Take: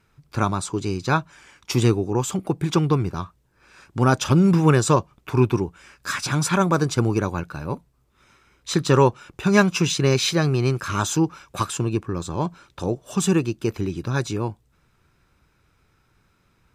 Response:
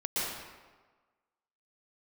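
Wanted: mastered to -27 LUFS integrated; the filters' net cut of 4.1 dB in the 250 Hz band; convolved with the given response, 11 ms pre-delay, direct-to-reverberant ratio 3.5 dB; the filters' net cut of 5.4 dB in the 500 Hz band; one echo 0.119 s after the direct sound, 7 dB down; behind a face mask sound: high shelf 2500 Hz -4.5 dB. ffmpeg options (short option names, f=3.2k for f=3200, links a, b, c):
-filter_complex "[0:a]equalizer=f=250:t=o:g=-5,equalizer=f=500:t=o:g=-5,aecho=1:1:119:0.447,asplit=2[a][b];[1:a]atrim=start_sample=2205,adelay=11[c];[b][c]afir=irnorm=-1:irlink=0,volume=-11dB[d];[a][d]amix=inputs=2:normalize=0,highshelf=f=2.5k:g=-4.5,volume=-4dB"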